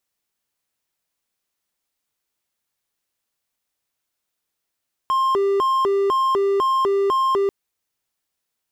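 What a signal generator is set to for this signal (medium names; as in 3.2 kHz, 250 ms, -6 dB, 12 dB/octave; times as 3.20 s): siren hi-lo 396–1060 Hz 2 per s triangle -14 dBFS 2.39 s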